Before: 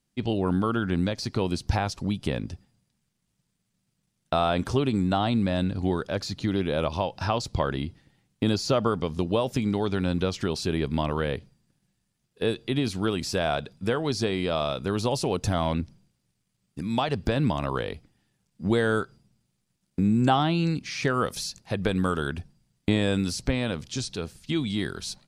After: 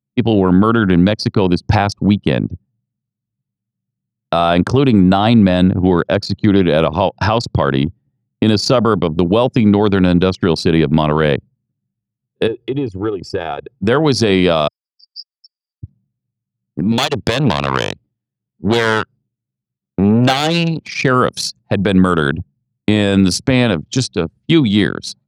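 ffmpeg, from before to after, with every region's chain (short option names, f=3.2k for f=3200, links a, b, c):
-filter_complex "[0:a]asettb=1/sr,asplit=3[a][b][c];[a]atrim=end=12.474[d];[b]atrim=start=12.47:end=13.79,asetpts=PTS-STARTPTS,afade=t=in:d=0.004:c=qsin,afade=t=out:st=1.316:d=0.004:c=qsin,bandreject=f=4k:w=5.6,aecho=1:1:2.4:0.78,atrim=end_sample=58212,acompressor=threshold=-34dB:ratio=2.5:attack=3.2:release=140:knee=1:detection=peak[e];[c]atrim=start=13.786[f];[d][e]acrossfade=d=0.004:c1=hsin:c2=qsin[g];[g][f]acrossfade=d=0.004:c1=qsin:c2=hsin,asettb=1/sr,asplit=3[h][i][j];[h]atrim=end=14.684[k];[i]atrim=start=14.68:end=15.83,asetpts=PTS-STARTPTS,afade=t=in:d=0.004:c=qsin,afade=t=out:st=1.146:d=0.004:c=qsin,asuperpass=centerf=5000:order=20:qfactor=5.3,aecho=1:1:4.9:0.3,atrim=end_sample=50715[l];[j]atrim=start=15.826[m];[k][l]acrossfade=d=0.004:c1=hsin:c2=qsin[n];[n][m]acrossfade=d=0.004:c1=qsin:c2=hsin,asettb=1/sr,asplit=3[o][p][q];[o]atrim=end=16.924[r];[p]atrim=start=16.92:end=20.88,asetpts=PTS-STARTPTS,afade=t=in:d=0.004:c=qsin,afade=t=out:st=3.956:d=0.004:c=qsin,equalizer=f=3.4k:t=o:w=1.5:g=10,aeval=exprs='max(val(0),0)':c=same[s];[q]atrim=start=20.876[t];[r][s]acrossfade=d=0.004:c1=hsin:c2=qsin[u];[u][t]acrossfade=d=0.004:c1=qsin:c2=hsin,anlmdn=25.1,highpass=f=96:w=0.5412,highpass=f=96:w=1.3066,alimiter=level_in=17dB:limit=-1dB:release=50:level=0:latency=1,volume=-1dB"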